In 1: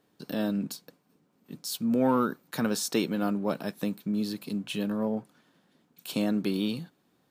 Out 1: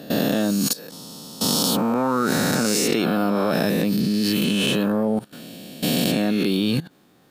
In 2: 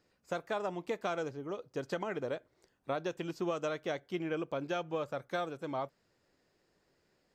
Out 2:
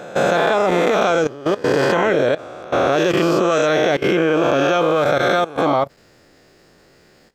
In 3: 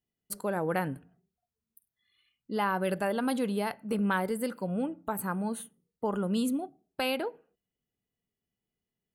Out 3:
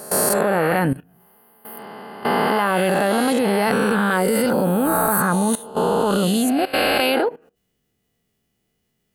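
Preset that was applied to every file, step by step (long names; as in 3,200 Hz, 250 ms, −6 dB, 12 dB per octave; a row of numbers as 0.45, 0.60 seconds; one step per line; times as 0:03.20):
peak hold with a rise ahead of every peak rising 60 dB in 1.66 s
output level in coarse steps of 18 dB
notch filter 970 Hz, Q 15
normalise the peak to −3 dBFS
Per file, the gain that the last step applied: +15.5, +20.0, +18.0 decibels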